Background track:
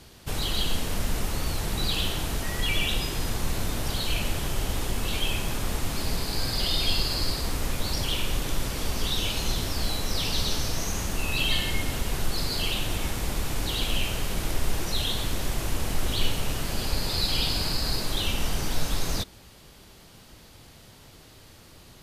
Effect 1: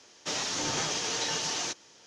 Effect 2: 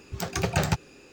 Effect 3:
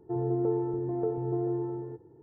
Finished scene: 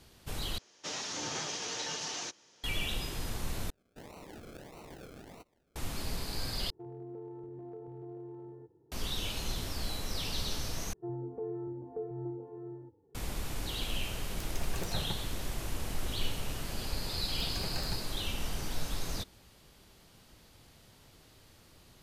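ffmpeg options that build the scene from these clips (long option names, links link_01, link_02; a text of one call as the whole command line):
ffmpeg -i bed.wav -i cue0.wav -i cue1.wav -i cue2.wav -filter_complex "[1:a]asplit=2[link_01][link_02];[3:a]asplit=2[link_03][link_04];[2:a]asplit=2[link_05][link_06];[0:a]volume=-8.5dB[link_07];[link_01]highpass=73[link_08];[link_02]acrusher=samples=37:mix=1:aa=0.000001:lfo=1:lforange=22.2:lforate=1.6[link_09];[link_03]acompressor=threshold=-31dB:ratio=3:attack=0.19:release=185:knee=1:detection=peak[link_10];[link_04]asplit=2[link_11][link_12];[link_12]adelay=2.3,afreqshift=-1.8[link_13];[link_11][link_13]amix=inputs=2:normalize=1[link_14];[link_05]acrossover=split=2200[link_15][link_16];[link_15]adelay=180[link_17];[link_17][link_16]amix=inputs=2:normalize=0[link_18];[link_07]asplit=5[link_19][link_20][link_21][link_22][link_23];[link_19]atrim=end=0.584[link_24];[link_08]atrim=end=2.06,asetpts=PTS-STARTPTS,volume=-6.5dB[link_25];[link_20]atrim=start=2.636:end=3.704[link_26];[link_09]atrim=end=2.06,asetpts=PTS-STARTPTS,volume=-17.5dB[link_27];[link_21]atrim=start=5.756:end=6.704[link_28];[link_10]atrim=end=2.22,asetpts=PTS-STARTPTS,volume=-10.5dB[link_29];[link_22]atrim=start=8.916:end=10.934[link_30];[link_14]atrim=end=2.22,asetpts=PTS-STARTPTS,volume=-7dB[link_31];[link_23]atrim=start=13.146[link_32];[link_18]atrim=end=1.12,asetpts=PTS-STARTPTS,volume=-14dB,afade=type=in:duration=0.004:curve=hsin,afade=type=out:start_time=1.116:duration=0.004:curve=hsin,adelay=14200[link_33];[link_06]atrim=end=1.12,asetpts=PTS-STARTPTS,volume=-17.5dB,afade=type=in:duration=0.004:curve=hsin,afade=type=out:start_time=1.116:duration=0.004:curve=hsin,adelay=17200[link_34];[link_24][link_25]acrossfade=duration=0.004:curve1=hsin:curve2=hsin[link_35];[link_35][link_26]acrossfade=duration=0.004:curve1=hsin:curve2=hsin[link_36];[link_36][link_27]acrossfade=duration=0.004:curve1=hsin:curve2=hsin[link_37];[link_37][link_28]acrossfade=duration=0.004:curve1=hsin:curve2=hsin[link_38];[link_38][link_29]acrossfade=duration=0.004:curve1=hsin:curve2=hsin[link_39];[link_39][link_30]acrossfade=duration=0.004:curve1=hsin:curve2=hsin[link_40];[link_40][link_31]acrossfade=duration=0.004:curve1=hsin:curve2=hsin[link_41];[link_41][link_32]acrossfade=duration=0.004:curve1=hsin:curve2=hsin[link_42];[link_42][link_33][link_34]amix=inputs=3:normalize=0" out.wav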